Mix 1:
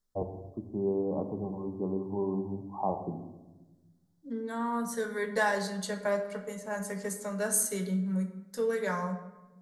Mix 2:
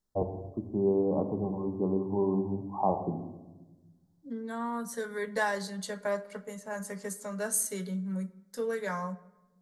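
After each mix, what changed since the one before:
first voice +3.5 dB
second voice: send −10.5 dB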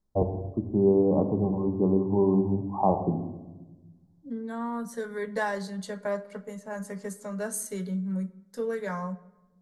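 first voice +3.0 dB
master: add spectral tilt −1.5 dB per octave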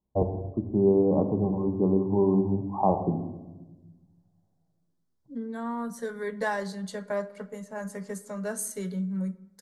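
second voice: entry +1.05 s

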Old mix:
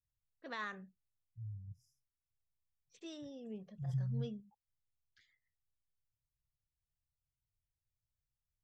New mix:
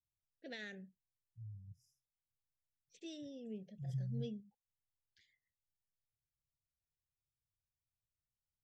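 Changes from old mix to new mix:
second voice: add low-shelf EQ 100 Hz −9.5 dB
master: add Butterworth band-reject 1,100 Hz, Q 0.86

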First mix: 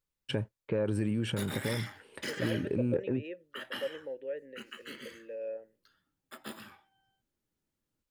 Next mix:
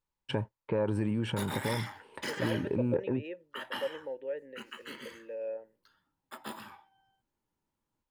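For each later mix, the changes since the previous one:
first voice: add high-shelf EQ 5,000 Hz −7.5 dB
master: add parametric band 930 Hz +12.5 dB 0.45 octaves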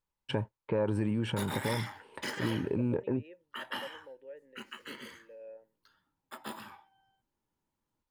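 second voice −11.0 dB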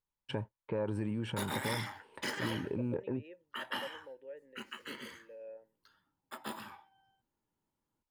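first voice −5.0 dB

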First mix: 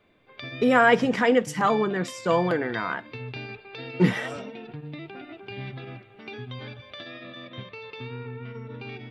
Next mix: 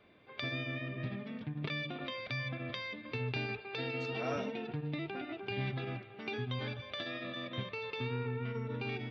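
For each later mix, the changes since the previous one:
first voice: muted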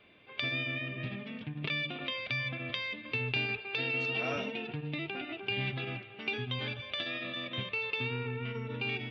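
master: add parametric band 2,800 Hz +10.5 dB 0.72 octaves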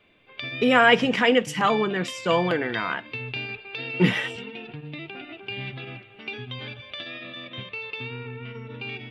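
first voice: unmuted
second voice: muted

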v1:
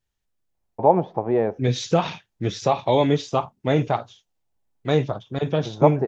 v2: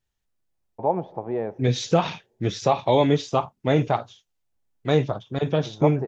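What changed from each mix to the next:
first voice −8.5 dB
reverb: on, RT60 2.2 s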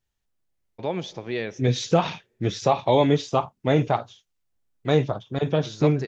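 first voice: remove low-pass with resonance 830 Hz, resonance Q 3.4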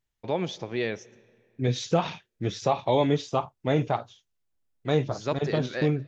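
first voice: entry −0.55 s
second voice −4.0 dB

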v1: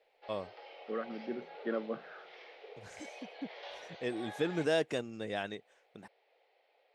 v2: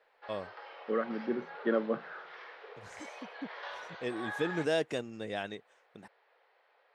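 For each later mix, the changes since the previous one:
second voice +6.0 dB
background: add flat-topped bell 1,300 Hz +12.5 dB 1.1 octaves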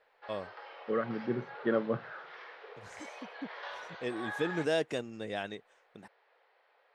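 second voice: remove Butterworth high-pass 160 Hz 48 dB per octave

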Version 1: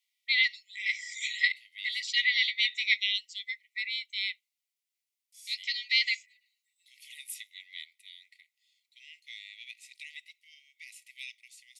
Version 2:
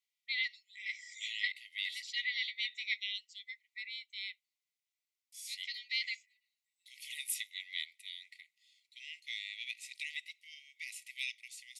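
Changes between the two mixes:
first voice −10.0 dB
second voice +4.0 dB

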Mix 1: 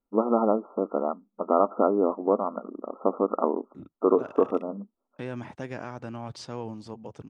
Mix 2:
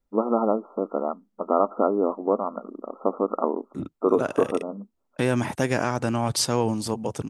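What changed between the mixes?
second voice +12.0 dB
master: remove high-frequency loss of the air 130 metres

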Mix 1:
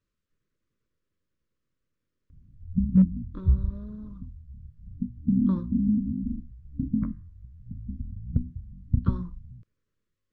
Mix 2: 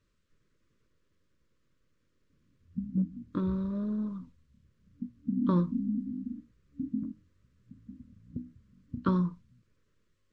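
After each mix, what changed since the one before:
speech +8.5 dB
background: add resonant band-pass 310 Hz, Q 3.2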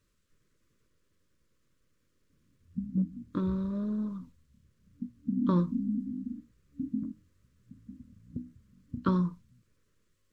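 master: remove high-frequency loss of the air 72 metres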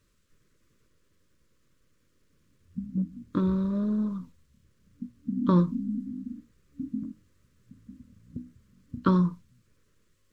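speech +5.0 dB

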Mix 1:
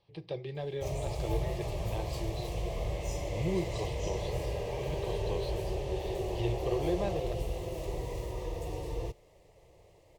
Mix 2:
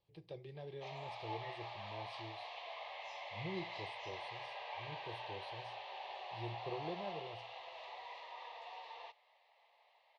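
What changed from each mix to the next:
speech −11.5 dB
background: add elliptic band-pass filter 790–4,000 Hz, stop band 50 dB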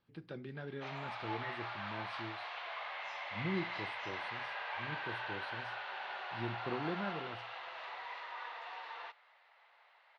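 master: remove phaser with its sweep stopped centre 600 Hz, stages 4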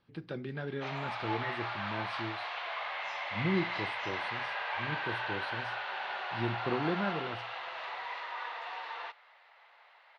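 speech +6.5 dB
background +5.5 dB

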